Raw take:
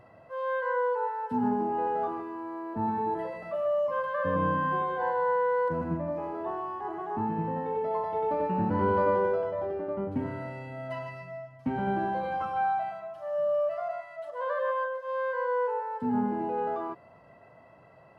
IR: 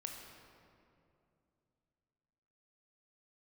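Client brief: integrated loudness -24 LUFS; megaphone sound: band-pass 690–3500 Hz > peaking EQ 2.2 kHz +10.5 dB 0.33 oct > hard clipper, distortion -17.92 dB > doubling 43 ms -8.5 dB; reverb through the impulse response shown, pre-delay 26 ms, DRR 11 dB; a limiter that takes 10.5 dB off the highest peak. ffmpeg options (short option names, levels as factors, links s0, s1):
-filter_complex "[0:a]alimiter=level_in=1.12:limit=0.0631:level=0:latency=1,volume=0.891,asplit=2[s0][s1];[1:a]atrim=start_sample=2205,adelay=26[s2];[s1][s2]afir=irnorm=-1:irlink=0,volume=0.355[s3];[s0][s3]amix=inputs=2:normalize=0,highpass=690,lowpass=3500,equalizer=f=2200:t=o:w=0.33:g=10.5,asoftclip=type=hard:threshold=0.0282,asplit=2[s4][s5];[s5]adelay=43,volume=0.376[s6];[s4][s6]amix=inputs=2:normalize=0,volume=4.22"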